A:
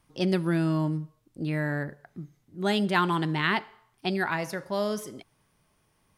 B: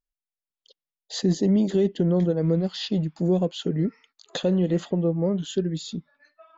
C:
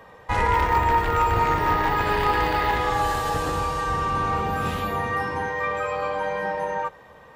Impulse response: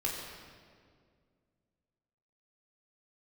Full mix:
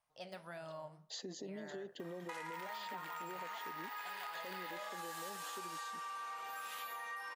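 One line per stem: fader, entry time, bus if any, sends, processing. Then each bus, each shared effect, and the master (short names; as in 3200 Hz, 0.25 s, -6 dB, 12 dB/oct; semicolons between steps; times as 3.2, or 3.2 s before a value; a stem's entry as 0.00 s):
-11.5 dB, 0.00 s, no send, de-esser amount 80%; resonant low shelf 460 Hz -12 dB, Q 3; flange 1.7 Hz, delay 9 ms, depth 9.6 ms, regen -68%
-9.0 dB, 0.00 s, no send, HPF 400 Hz 12 dB/oct; limiter -23 dBFS, peak gain reduction 7 dB; requantised 12-bit, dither none
-1.5 dB, 2.00 s, no send, compressor, threshold -27 dBFS, peak gain reduction 11 dB; HPF 1100 Hz 12 dB/oct; high shelf 6200 Hz +11.5 dB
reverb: off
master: compressor 6:1, threshold -43 dBFS, peak gain reduction 13.5 dB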